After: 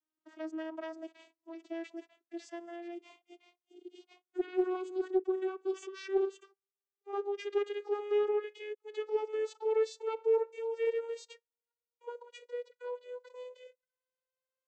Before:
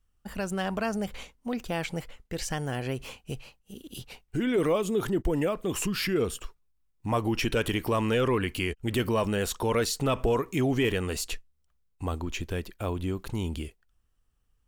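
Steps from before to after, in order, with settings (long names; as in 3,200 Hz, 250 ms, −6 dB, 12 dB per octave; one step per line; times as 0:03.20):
vocoder with a gliding carrier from D#4, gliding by +9 semitones
harmonic and percussive parts rebalanced percussive −17 dB
highs frequency-modulated by the lows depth 0.15 ms
level −5.5 dB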